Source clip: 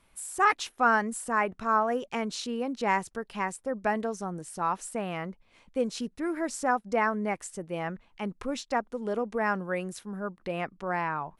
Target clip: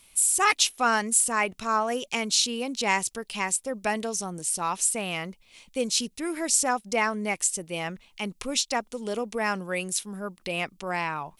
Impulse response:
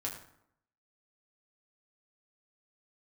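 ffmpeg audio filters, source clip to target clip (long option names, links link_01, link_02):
-af "aexciter=amount=4.9:drive=4.4:freq=2300"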